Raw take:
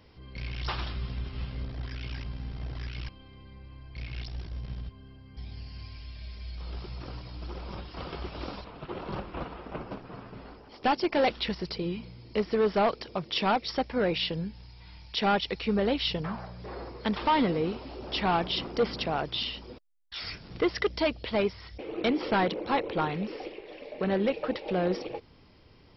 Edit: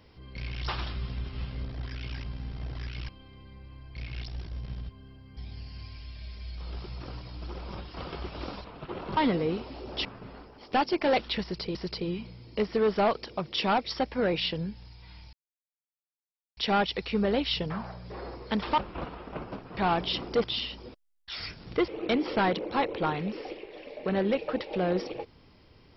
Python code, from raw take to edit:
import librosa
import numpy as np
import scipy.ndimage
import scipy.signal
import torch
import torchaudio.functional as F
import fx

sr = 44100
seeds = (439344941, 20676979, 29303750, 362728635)

y = fx.edit(x, sr, fx.swap(start_s=9.17, length_s=0.99, other_s=17.32, other_length_s=0.88),
    fx.repeat(start_s=11.53, length_s=0.33, count=2),
    fx.insert_silence(at_s=15.11, length_s=1.24),
    fx.cut(start_s=18.87, length_s=0.41),
    fx.cut(start_s=20.72, length_s=1.11), tone=tone)